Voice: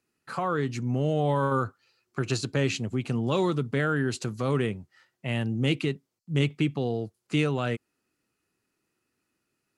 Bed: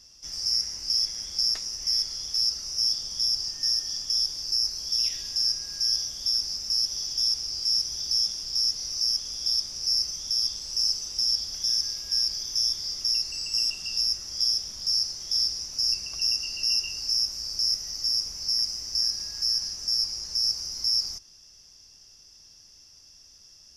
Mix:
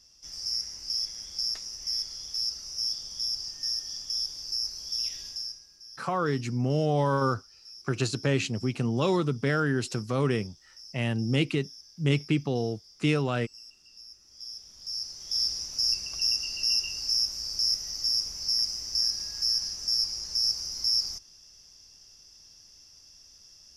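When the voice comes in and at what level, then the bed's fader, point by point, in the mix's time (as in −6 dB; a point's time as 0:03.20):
5.70 s, 0.0 dB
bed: 0:05.27 −5.5 dB
0:05.79 −23 dB
0:14.08 −23 dB
0:15.51 −1 dB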